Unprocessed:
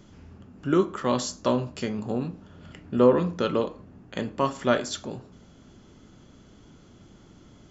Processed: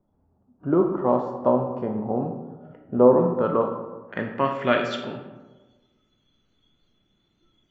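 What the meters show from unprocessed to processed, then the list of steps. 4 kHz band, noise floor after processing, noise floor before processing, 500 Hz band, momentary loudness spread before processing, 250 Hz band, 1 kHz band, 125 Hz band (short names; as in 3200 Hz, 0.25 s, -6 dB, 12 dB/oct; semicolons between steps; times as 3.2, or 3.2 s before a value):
-3.0 dB, -69 dBFS, -53 dBFS, +4.0 dB, 16 LU, +2.0 dB, +4.0 dB, +1.0 dB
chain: spectral noise reduction 20 dB; low-pass sweep 810 Hz -> 2700 Hz, 3.16–4.82; digital reverb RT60 1.3 s, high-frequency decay 0.45×, pre-delay 0 ms, DRR 5 dB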